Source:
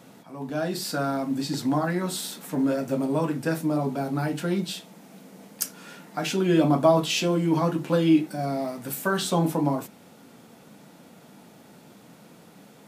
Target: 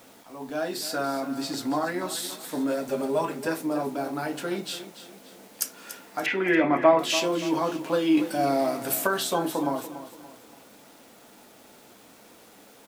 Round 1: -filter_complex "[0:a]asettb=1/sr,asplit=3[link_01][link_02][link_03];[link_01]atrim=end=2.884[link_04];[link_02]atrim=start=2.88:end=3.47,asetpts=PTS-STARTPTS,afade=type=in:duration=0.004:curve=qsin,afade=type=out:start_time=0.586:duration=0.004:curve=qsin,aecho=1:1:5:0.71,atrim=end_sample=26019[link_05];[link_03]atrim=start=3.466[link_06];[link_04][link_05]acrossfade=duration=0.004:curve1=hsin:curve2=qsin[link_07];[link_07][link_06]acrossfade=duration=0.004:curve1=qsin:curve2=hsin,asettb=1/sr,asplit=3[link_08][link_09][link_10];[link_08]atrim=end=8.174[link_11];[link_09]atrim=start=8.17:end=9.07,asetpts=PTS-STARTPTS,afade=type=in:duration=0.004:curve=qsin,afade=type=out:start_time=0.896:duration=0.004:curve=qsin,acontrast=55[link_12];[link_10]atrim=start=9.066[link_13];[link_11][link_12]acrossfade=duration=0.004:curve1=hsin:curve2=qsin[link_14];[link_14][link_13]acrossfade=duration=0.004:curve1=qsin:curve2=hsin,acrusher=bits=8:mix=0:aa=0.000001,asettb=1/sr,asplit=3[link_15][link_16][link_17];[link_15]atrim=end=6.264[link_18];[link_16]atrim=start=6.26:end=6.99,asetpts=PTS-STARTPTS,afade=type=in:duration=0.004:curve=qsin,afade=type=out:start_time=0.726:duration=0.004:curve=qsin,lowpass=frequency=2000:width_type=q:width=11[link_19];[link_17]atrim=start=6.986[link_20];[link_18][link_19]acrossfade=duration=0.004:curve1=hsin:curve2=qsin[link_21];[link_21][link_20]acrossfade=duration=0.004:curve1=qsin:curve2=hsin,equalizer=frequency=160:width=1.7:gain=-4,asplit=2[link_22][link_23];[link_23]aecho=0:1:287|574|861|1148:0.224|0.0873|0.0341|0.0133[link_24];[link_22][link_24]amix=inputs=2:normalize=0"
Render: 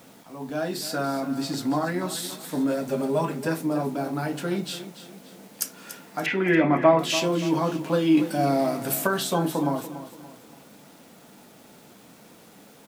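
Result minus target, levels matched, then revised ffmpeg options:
125 Hz band +8.0 dB
-filter_complex "[0:a]asettb=1/sr,asplit=3[link_01][link_02][link_03];[link_01]atrim=end=2.884[link_04];[link_02]atrim=start=2.88:end=3.47,asetpts=PTS-STARTPTS,afade=type=in:duration=0.004:curve=qsin,afade=type=out:start_time=0.586:duration=0.004:curve=qsin,aecho=1:1:5:0.71,atrim=end_sample=26019[link_05];[link_03]atrim=start=3.466[link_06];[link_04][link_05]acrossfade=duration=0.004:curve1=hsin:curve2=qsin[link_07];[link_07][link_06]acrossfade=duration=0.004:curve1=qsin:curve2=hsin,asettb=1/sr,asplit=3[link_08][link_09][link_10];[link_08]atrim=end=8.174[link_11];[link_09]atrim=start=8.17:end=9.07,asetpts=PTS-STARTPTS,afade=type=in:duration=0.004:curve=qsin,afade=type=out:start_time=0.896:duration=0.004:curve=qsin,acontrast=55[link_12];[link_10]atrim=start=9.066[link_13];[link_11][link_12]acrossfade=duration=0.004:curve1=hsin:curve2=qsin[link_14];[link_14][link_13]acrossfade=duration=0.004:curve1=qsin:curve2=hsin,acrusher=bits=8:mix=0:aa=0.000001,asettb=1/sr,asplit=3[link_15][link_16][link_17];[link_15]atrim=end=6.264[link_18];[link_16]atrim=start=6.26:end=6.99,asetpts=PTS-STARTPTS,afade=type=in:duration=0.004:curve=qsin,afade=type=out:start_time=0.726:duration=0.004:curve=qsin,lowpass=frequency=2000:width_type=q:width=11[link_19];[link_17]atrim=start=6.986[link_20];[link_18][link_19]acrossfade=duration=0.004:curve1=hsin:curve2=qsin[link_21];[link_21][link_20]acrossfade=duration=0.004:curve1=qsin:curve2=hsin,equalizer=frequency=160:width=1.7:gain=-15,asplit=2[link_22][link_23];[link_23]aecho=0:1:287|574|861|1148:0.224|0.0873|0.0341|0.0133[link_24];[link_22][link_24]amix=inputs=2:normalize=0"

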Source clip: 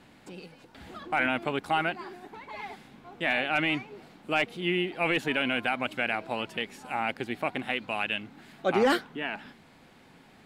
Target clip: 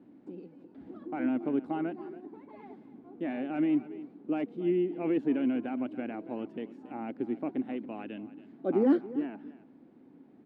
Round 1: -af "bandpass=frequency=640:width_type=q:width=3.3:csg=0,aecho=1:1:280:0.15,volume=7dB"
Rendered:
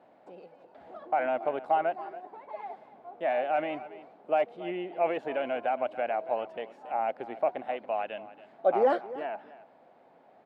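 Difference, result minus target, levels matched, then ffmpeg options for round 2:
250 Hz band −14.0 dB
-af "bandpass=frequency=290:width_type=q:width=3.3:csg=0,aecho=1:1:280:0.15,volume=7dB"

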